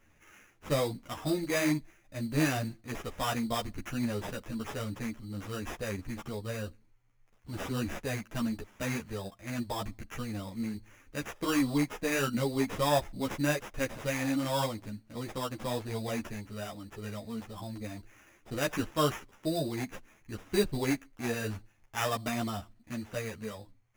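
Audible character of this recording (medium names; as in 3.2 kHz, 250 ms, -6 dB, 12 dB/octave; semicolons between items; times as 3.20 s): aliases and images of a low sample rate 4.3 kHz, jitter 0%; a shimmering, thickened sound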